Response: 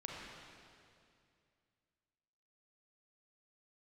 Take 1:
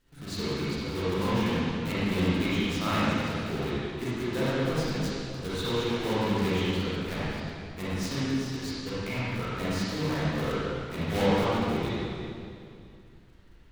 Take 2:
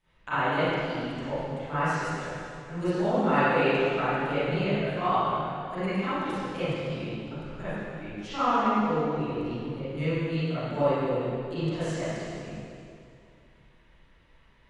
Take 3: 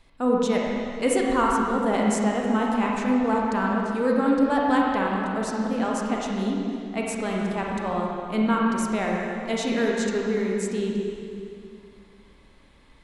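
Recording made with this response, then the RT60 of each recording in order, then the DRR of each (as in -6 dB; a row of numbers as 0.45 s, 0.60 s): 3; 2.4 s, 2.4 s, 2.4 s; -11.5 dB, -18.0 dB, -2.5 dB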